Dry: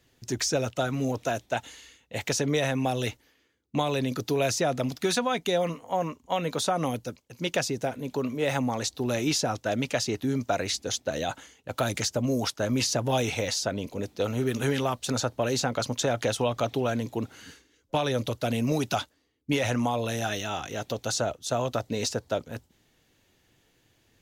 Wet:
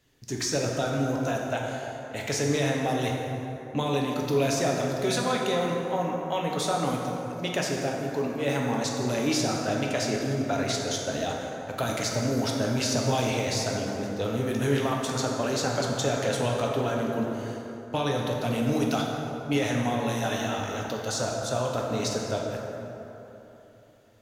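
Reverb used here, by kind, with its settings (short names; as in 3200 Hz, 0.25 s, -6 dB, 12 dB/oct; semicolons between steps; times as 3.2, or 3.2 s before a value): plate-style reverb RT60 3.4 s, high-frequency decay 0.45×, DRR -1.5 dB; gain -3 dB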